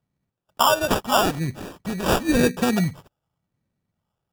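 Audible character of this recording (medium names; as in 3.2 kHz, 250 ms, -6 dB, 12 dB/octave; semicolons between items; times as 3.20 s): phasing stages 4, 0.88 Hz, lowest notch 260–1200 Hz; aliases and images of a low sample rate 2.1 kHz, jitter 0%; MP3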